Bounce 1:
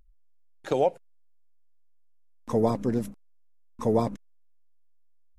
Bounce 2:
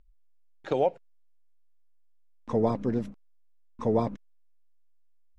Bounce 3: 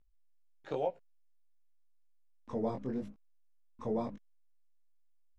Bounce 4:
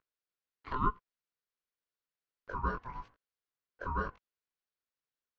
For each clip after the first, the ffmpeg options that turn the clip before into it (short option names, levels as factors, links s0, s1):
-af "lowpass=4200,volume=0.841"
-af "flanger=delay=16:depth=7.4:speed=0.9,volume=0.501"
-af "highpass=f=500:w=0.5412,highpass=f=500:w=1.3066,equalizer=f=520:t=q:w=4:g=5,equalizer=f=960:t=q:w=4:g=6,equalizer=f=3000:t=q:w=4:g=-5,lowpass=f=4800:w=0.5412,lowpass=f=4800:w=1.3066,aeval=exprs='val(0)*sin(2*PI*510*n/s)':c=same,volume=1.78"